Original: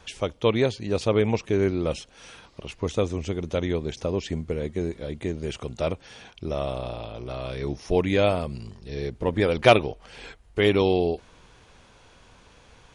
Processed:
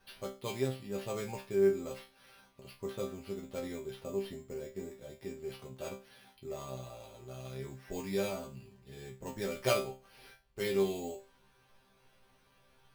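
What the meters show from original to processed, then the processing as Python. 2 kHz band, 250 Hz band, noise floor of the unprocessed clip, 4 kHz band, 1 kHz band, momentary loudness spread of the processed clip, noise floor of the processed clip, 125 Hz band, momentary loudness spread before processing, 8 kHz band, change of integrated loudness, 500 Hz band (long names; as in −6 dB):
−14.0 dB, −13.0 dB, −55 dBFS, −13.0 dB, −15.0 dB, 18 LU, −68 dBFS, −15.5 dB, 16 LU, −3.5 dB, −11.5 dB, −11.0 dB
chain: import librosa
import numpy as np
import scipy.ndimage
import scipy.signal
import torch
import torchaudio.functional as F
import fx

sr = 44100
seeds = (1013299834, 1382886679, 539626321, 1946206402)

y = fx.sample_hold(x, sr, seeds[0], rate_hz=7300.0, jitter_pct=0)
y = fx.resonator_bank(y, sr, root=48, chord='fifth', decay_s=0.31)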